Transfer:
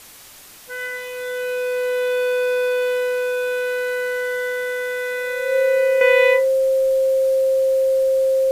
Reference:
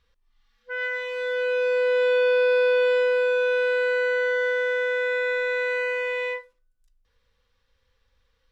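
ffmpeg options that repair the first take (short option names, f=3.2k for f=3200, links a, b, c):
-af "adeclick=t=4,bandreject=f=530:w=30,afwtdn=0.0079,asetnsamples=n=441:p=0,asendcmd='6.01 volume volume -11.5dB',volume=0dB"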